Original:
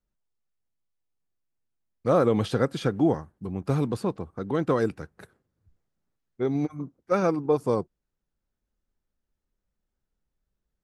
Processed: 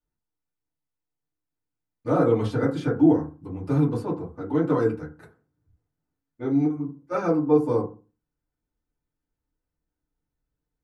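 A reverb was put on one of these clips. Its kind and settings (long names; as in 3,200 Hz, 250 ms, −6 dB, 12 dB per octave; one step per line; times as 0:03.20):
feedback delay network reverb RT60 0.33 s, low-frequency decay 1.25×, high-frequency decay 0.35×, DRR −6.5 dB
level −9 dB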